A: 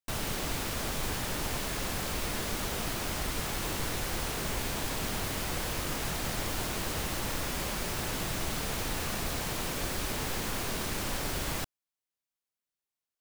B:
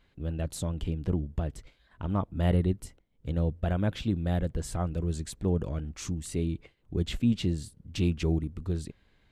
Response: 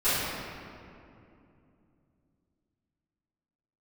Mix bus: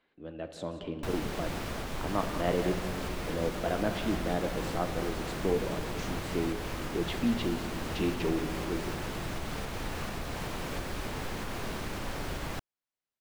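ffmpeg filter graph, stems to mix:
-filter_complex "[0:a]alimiter=level_in=1.19:limit=0.0631:level=0:latency=1:release=397,volume=0.841,adelay=950,volume=1.26[s0];[1:a]acrossover=split=240 6300:gain=0.0708 1 0.251[s1][s2][s3];[s1][s2][s3]amix=inputs=3:normalize=0,dynaudnorm=f=210:g=5:m=1.78,volume=0.75,asplit=3[s4][s5][s6];[s5]volume=0.0841[s7];[s6]volume=0.211[s8];[2:a]atrim=start_sample=2205[s9];[s7][s9]afir=irnorm=-1:irlink=0[s10];[s8]aecho=0:1:181:1[s11];[s0][s4][s10][s11]amix=inputs=4:normalize=0,highshelf=f=4300:g=-12"

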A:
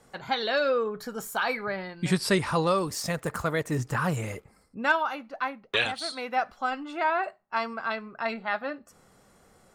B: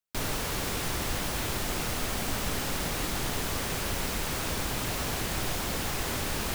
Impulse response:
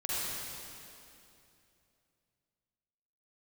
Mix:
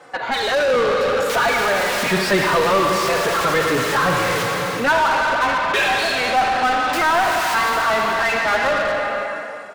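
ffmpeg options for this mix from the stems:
-filter_complex "[0:a]highshelf=f=4000:g=-10.5,asplit=2[s0][s1];[s1]adelay=3.4,afreqshift=-1.7[s2];[s0][s2]amix=inputs=2:normalize=1,volume=1.41,asplit=3[s3][s4][s5];[s4]volume=0.447[s6];[1:a]highpass=1300,adelay=1150,volume=0.891,asplit=3[s7][s8][s9];[s7]atrim=end=4.43,asetpts=PTS-STARTPTS,afade=t=out:st=4.426:d=0.004:c=hsin[s10];[s8]atrim=start=4.43:end=6.93,asetpts=PTS-STARTPTS,volume=0[s11];[s9]atrim=start=6.93,asetpts=PTS-STARTPTS,afade=t=in:d=0.004:c=hsin[s12];[s10][s11][s12]concat=n=3:v=0:a=1,asplit=2[s13][s14];[s14]volume=0.237[s15];[s5]apad=whole_len=339312[s16];[s13][s16]sidechaincompress=threshold=0.0126:ratio=8:attack=16:release=286[s17];[2:a]atrim=start_sample=2205[s18];[s6][s15]amix=inputs=2:normalize=0[s19];[s19][s18]afir=irnorm=-1:irlink=0[s20];[s3][s17][s20]amix=inputs=3:normalize=0,lowshelf=f=180:g=-11.5,dynaudnorm=f=370:g=5:m=2.37,asplit=2[s21][s22];[s22]highpass=f=720:p=1,volume=17.8,asoftclip=type=tanh:threshold=0.251[s23];[s21][s23]amix=inputs=2:normalize=0,lowpass=f=2900:p=1,volume=0.501"

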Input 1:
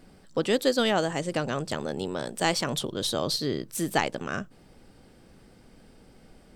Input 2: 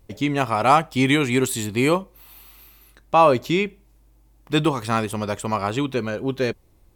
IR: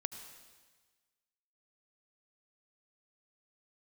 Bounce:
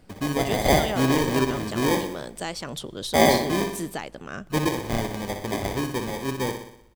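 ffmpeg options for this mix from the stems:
-filter_complex "[0:a]alimiter=limit=0.141:level=0:latency=1:release=484,volume=0.668,asplit=2[s0][s1];[s1]volume=0.133[s2];[1:a]lowpass=8400,acrusher=samples=32:mix=1:aa=0.000001,volume=0.596,asplit=2[s3][s4];[s4]volume=0.447[s5];[2:a]atrim=start_sample=2205[s6];[s2][s6]afir=irnorm=-1:irlink=0[s7];[s5]aecho=0:1:61|122|183|244|305|366|427|488:1|0.55|0.303|0.166|0.0915|0.0503|0.0277|0.0152[s8];[s0][s3][s7][s8]amix=inputs=4:normalize=0"

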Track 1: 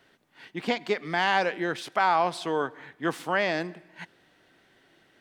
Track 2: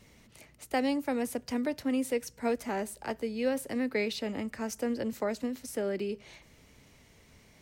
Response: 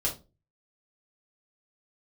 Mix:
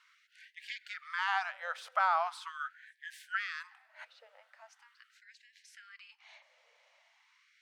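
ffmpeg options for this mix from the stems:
-filter_complex "[0:a]equalizer=f=1300:t=o:w=0.44:g=11.5,volume=0.299,asplit=2[s0][s1];[1:a]lowpass=3900,acompressor=threshold=0.0282:ratio=6,volume=0.708[s2];[s1]apad=whole_len=335658[s3];[s2][s3]sidechaincompress=threshold=0.002:ratio=5:attack=34:release=1280[s4];[s0][s4]amix=inputs=2:normalize=0,afftfilt=real='re*gte(b*sr/1024,470*pow(1600/470,0.5+0.5*sin(2*PI*0.41*pts/sr)))':imag='im*gte(b*sr/1024,470*pow(1600/470,0.5+0.5*sin(2*PI*0.41*pts/sr)))':win_size=1024:overlap=0.75"

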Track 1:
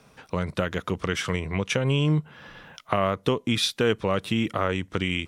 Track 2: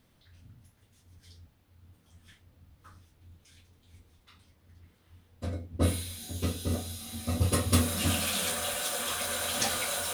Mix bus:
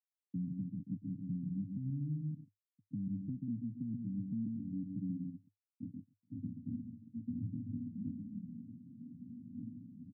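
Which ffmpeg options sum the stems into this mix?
-filter_complex "[0:a]highpass=120,bandreject=f=380:w=12,volume=0.631,asplit=3[s0][s1][s2];[s1]volume=0.562[s3];[1:a]alimiter=limit=0.0891:level=0:latency=1:release=395,volume=1.06,asplit=2[s4][s5];[s5]volume=0.178[s6];[s2]apad=whole_len=446756[s7];[s4][s7]sidechaincompress=threshold=0.00501:ratio=16:attack=8.9:release=864[s8];[s3][s6]amix=inputs=2:normalize=0,aecho=0:1:135|270|405|540:1|0.28|0.0784|0.022[s9];[s0][s8][s9]amix=inputs=3:normalize=0,acrusher=bits=5:mix=0:aa=0.000001,asuperpass=centerf=170:order=20:qfactor=0.9,alimiter=level_in=2.24:limit=0.0631:level=0:latency=1:release=434,volume=0.447"

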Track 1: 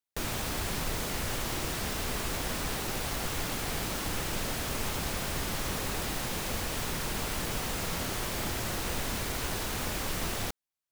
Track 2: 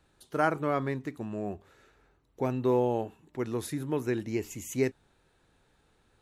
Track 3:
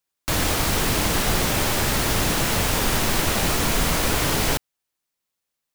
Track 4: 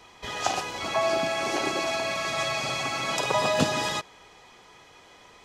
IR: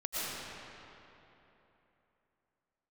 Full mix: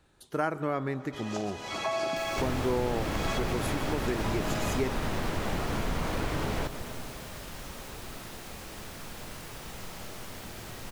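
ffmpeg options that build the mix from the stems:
-filter_complex "[0:a]adelay=2000,volume=0.178,asplit=2[s0][s1];[s1]volume=0.708[s2];[1:a]volume=1.26,asplit=3[s3][s4][s5];[s4]volume=0.0668[s6];[2:a]lowpass=f=1400:p=1,adelay=2100,volume=0.596,asplit=2[s7][s8];[s8]volume=0.126[s9];[3:a]adelay=900,volume=0.668,asplit=2[s10][s11];[s11]volume=0.0841[s12];[s5]apad=whole_len=279984[s13];[s10][s13]sidechaincompress=threshold=0.0112:ratio=8:attack=11:release=215[s14];[4:a]atrim=start_sample=2205[s15];[s2][s6][s9][s12]amix=inputs=4:normalize=0[s16];[s16][s15]afir=irnorm=-1:irlink=0[s17];[s0][s3][s7][s14][s17]amix=inputs=5:normalize=0,acompressor=threshold=0.0355:ratio=2"

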